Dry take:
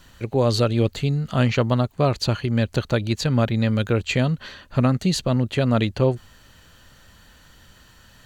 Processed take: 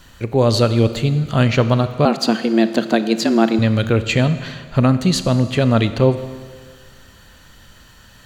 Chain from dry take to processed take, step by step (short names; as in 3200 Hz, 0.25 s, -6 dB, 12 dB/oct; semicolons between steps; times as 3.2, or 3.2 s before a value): Schroeder reverb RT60 1.7 s, combs from 27 ms, DRR 11.5 dB; 2.05–3.59 frequency shift +110 Hz; gain +4.5 dB